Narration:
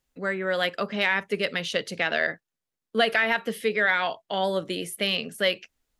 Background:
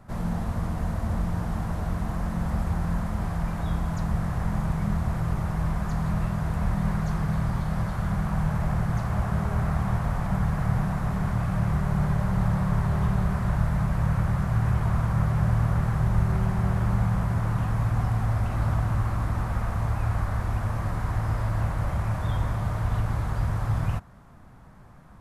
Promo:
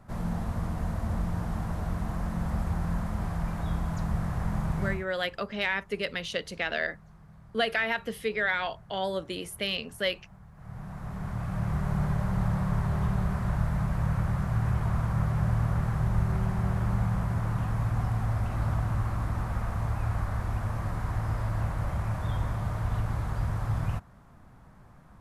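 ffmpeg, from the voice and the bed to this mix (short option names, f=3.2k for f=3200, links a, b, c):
-filter_complex "[0:a]adelay=4600,volume=-5dB[a];[1:a]volume=20dB,afade=t=out:st=4.86:d=0.2:silence=0.0668344,afade=t=in:st=10.54:d=1.34:silence=0.0707946[b];[a][b]amix=inputs=2:normalize=0"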